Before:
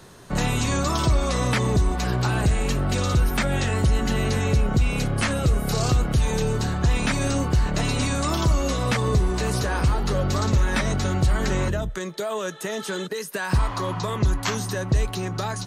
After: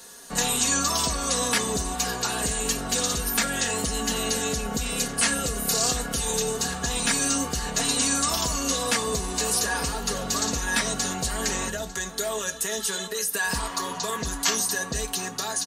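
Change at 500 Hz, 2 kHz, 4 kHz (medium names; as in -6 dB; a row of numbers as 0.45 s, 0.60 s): -3.5 dB, +0.5 dB, +4.5 dB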